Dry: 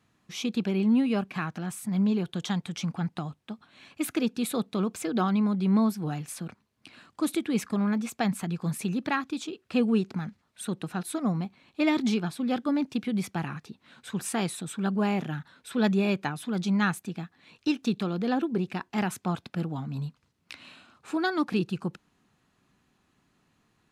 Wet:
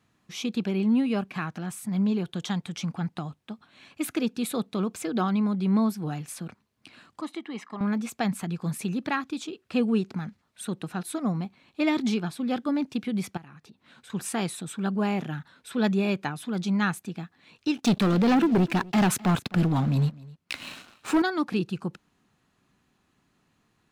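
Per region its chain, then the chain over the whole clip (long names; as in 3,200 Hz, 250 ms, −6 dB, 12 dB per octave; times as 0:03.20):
0:07.21–0:07.81: high-pass filter 430 Hz + head-to-tape spacing loss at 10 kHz 21 dB + comb filter 1 ms, depth 54%
0:13.37–0:14.10: downward compressor 3 to 1, threshold −49 dBFS + one half of a high-frequency compander decoder only
0:17.77–0:21.22: leveller curve on the samples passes 3 + single-tap delay 257 ms −21.5 dB
whole clip: no processing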